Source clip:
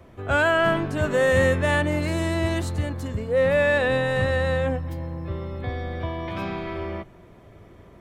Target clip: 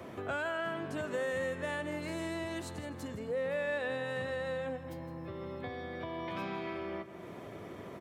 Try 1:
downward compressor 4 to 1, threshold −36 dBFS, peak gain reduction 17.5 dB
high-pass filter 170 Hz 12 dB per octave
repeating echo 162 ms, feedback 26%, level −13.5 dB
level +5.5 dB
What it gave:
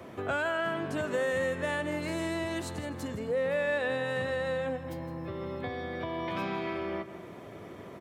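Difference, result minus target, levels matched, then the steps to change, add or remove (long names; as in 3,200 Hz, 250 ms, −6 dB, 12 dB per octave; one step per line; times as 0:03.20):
downward compressor: peak gain reduction −5 dB
change: downward compressor 4 to 1, threshold −42.5 dBFS, peak gain reduction 22 dB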